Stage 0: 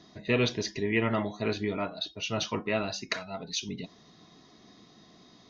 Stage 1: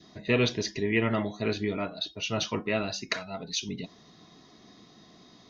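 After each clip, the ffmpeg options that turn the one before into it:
-af "adynamicequalizer=threshold=0.00398:dfrequency=940:dqfactor=1.5:tfrequency=940:tqfactor=1.5:attack=5:release=100:ratio=0.375:range=2.5:mode=cutabove:tftype=bell,volume=1.5dB"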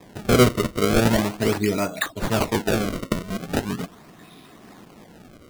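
-af "acrusher=samples=30:mix=1:aa=0.000001:lfo=1:lforange=48:lforate=0.4,volume=8dB"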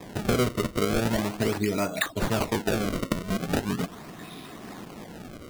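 -af "acompressor=threshold=-29dB:ratio=4,volume=5dB"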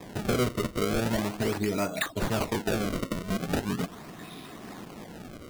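-af "asoftclip=type=hard:threshold=-19.5dB,volume=-1.5dB"

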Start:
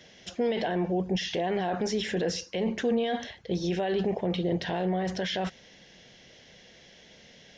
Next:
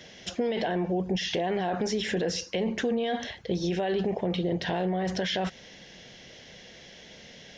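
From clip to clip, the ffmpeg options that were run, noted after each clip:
-af "acompressor=threshold=-32dB:ratio=2.5,volume=5dB"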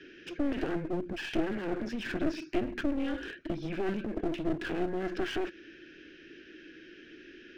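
-filter_complex "[0:a]asplit=3[a][b][c];[a]bandpass=f=530:t=q:w=8,volume=0dB[d];[b]bandpass=f=1.84k:t=q:w=8,volume=-6dB[e];[c]bandpass=f=2.48k:t=q:w=8,volume=-9dB[f];[d][e][f]amix=inputs=3:normalize=0,afreqshift=-190,aeval=exprs='clip(val(0),-1,0.00447)':c=same,volume=8.5dB"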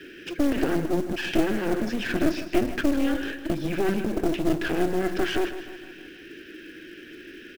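-filter_complex "[0:a]acrusher=bits=5:mode=log:mix=0:aa=0.000001,asplit=2[a][b];[b]aecho=0:1:156|312|468|624|780:0.237|0.123|0.0641|0.0333|0.0173[c];[a][c]amix=inputs=2:normalize=0,volume=7.5dB"

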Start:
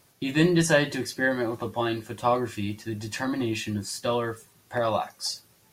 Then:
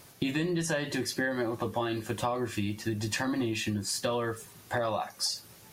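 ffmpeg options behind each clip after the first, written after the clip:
-filter_complex "[0:a]asplit=2[a][b];[b]alimiter=limit=-19dB:level=0:latency=1:release=74,volume=2.5dB[c];[a][c]amix=inputs=2:normalize=0,acompressor=threshold=-28dB:ratio=6"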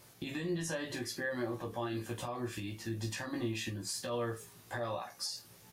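-filter_complex "[0:a]alimiter=limit=-22.5dB:level=0:latency=1:release=116,asplit=2[a][b];[b]aecho=0:1:17|44:0.708|0.299[c];[a][c]amix=inputs=2:normalize=0,volume=-7dB"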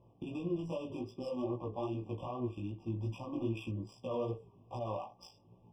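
-af "adynamicsmooth=sensitivity=6.5:basefreq=930,flanger=delay=15.5:depth=5.1:speed=2.5,afftfilt=real='re*eq(mod(floor(b*sr/1024/1200),2),0)':imag='im*eq(mod(floor(b*sr/1024/1200),2),0)':win_size=1024:overlap=0.75,volume=3dB"

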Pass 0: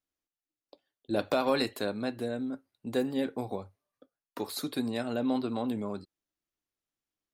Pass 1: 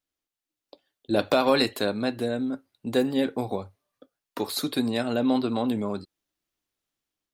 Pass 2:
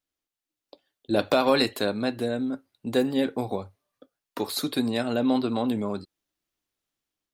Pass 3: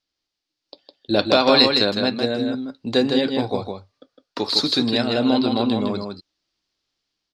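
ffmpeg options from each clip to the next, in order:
-af "equalizer=f=3.5k:w=1.5:g=2.5,dynaudnorm=f=220:g=5:m=4dB,volume=2dB"
-af anull
-filter_complex "[0:a]lowpass=f=4.8k:t=q:w=3.3,asplit=2[a][b];[b]aecho=0:1:158:0.562[c];[a][c]amix=inputs=2:normalize=0,volume=4dB"

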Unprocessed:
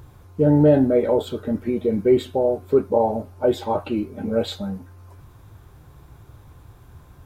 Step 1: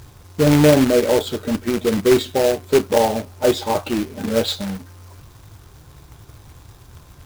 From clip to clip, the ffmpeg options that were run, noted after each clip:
-af "equalizer=f=5.3k:t=o:w=1.4:g=9,acrusher=bits=2:mode=log:mix=0:aa=0.000001,volume=2dB"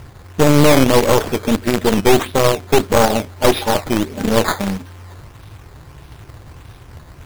-af "acrusher=samples=11:mix=1:aa=0.000001:lfo=1:lforange=11:lforate=1.6,aeval=exprs='0.841*(cos(1*acos(clip(val(0)/0.841,-1,1)))-cos(1*PI/2))+0.266*(cos(4*acos(clip(val(0)/0.841,-1,1)))-cos(4*PI/2))':c=same,alimiter=level_in=6dB:limit=-1dB:release=50:level=0:latency=1,volume=-1dB"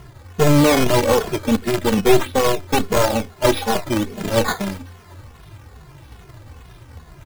-filter_complex "[0:a]asplit=2[a][b];[b]adelay=2.4,afreqshift=-2.4[c];[a][c]amix=inputs=2:normalize=1"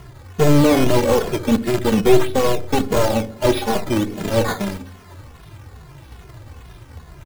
-filter_complex "[0:a]acrossover=split=590[a][b];[a]aecho=1:1:64|128|192|256|320|384:0.299|0.152|0.0776|0.0396|0.0202|0.0103[c];[b]asoftclip=type=tanh:threshold=-20dB[d];[c][d]amix=inputs=2:normalize=0,volume=1dB"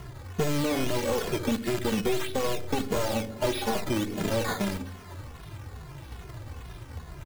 -filter_complex "[0:a]acrossover=split=1500[a][b];[a]acompressor=threshold=-23dB:ratio=6[c];[b]alimiter=limit=-24dB:level=0:latency=1:release=15[d];[c][d]amix=inputs=2:normalize=0,volume=-1.5dB"

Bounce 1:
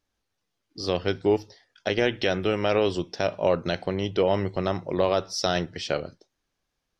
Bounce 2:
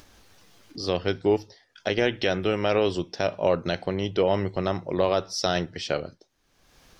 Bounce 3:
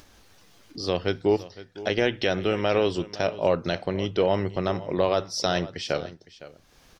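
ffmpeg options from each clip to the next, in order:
-af "acompressor=mode=upward:threshold=-34dB:ratio=2.5"
-af "aecho=1:1:510:0.141"

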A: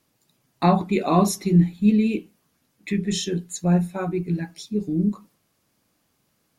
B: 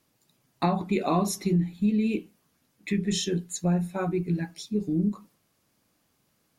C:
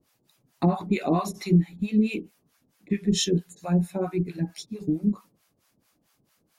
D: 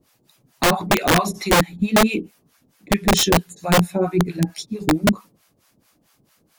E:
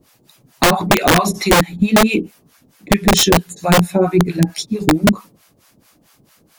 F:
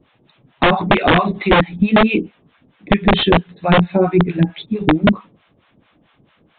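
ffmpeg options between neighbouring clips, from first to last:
-af "acompressor=threshold=-19dB:ratio=6,volume=-1.5dB"
-filter_complex "[0:a]acrossover=split=650[a][b];[a]aeval=exprs='val(0)*(1-1/2+1/2*cos(2*PI*4.5*n/s))':c=same[c];[b]aeval=exprs='val(0)*(1-1/2-1/2*cos(2*PI*4.5*n/s))':c=same[d];[c][d]amix=inputs=2:normalize=0,volume=6dB"
-af "aeval=exprs='(mod(6.68*val(0)+1,2)-1)/6.68':c=same,volume=7.5dB"
-af "acompressor=threshold=-16dB:ratio=6,volume=7.5dB"
-af "aresample=8000,aresample=44100"

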